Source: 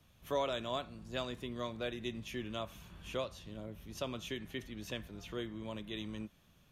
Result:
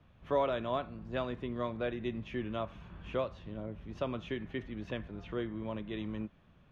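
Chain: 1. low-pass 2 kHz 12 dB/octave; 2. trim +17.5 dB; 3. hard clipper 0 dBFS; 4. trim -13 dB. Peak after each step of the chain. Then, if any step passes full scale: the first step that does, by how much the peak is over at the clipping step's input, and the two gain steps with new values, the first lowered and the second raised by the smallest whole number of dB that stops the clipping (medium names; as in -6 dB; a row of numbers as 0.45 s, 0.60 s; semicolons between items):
-23.0 dBFS, -5.5 dBFS, -5.5 dBFS, -18.5 dBFS; nothing clips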